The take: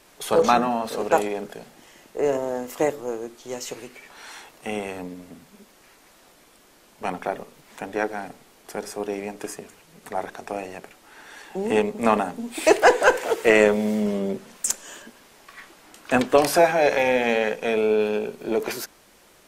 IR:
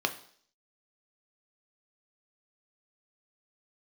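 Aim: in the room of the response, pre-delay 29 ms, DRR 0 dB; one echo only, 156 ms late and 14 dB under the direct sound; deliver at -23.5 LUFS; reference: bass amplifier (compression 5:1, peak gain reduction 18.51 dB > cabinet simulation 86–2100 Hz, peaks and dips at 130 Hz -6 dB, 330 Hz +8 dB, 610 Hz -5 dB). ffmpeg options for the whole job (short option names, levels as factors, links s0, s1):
-filter_complex "[0:a]aecho=1:1:156:0.2,asplit=2[s0][s1];[1:a]atrim=start_sample=2205,adelay=29[s2];[s1][s2]afir=irnorm=-1:irlink=0,volume=0.398[s3];[s0][s3]amix=inputs=2:normalize=0,acompressor=threshold=0.0355:ratio=5,highpass=f=86:w=0.5412,highpass=f=86:w=1.3066,equalizer=f=130:t=q:w=4:g=-6,equalizer=f=330:t=q:w=4:g=8,equalizer=f=610:t=q:w=4:g=-5,lowpass=f=2100:w=0.5412,lowpass=f=2100:w=1.3066,volume=2.99"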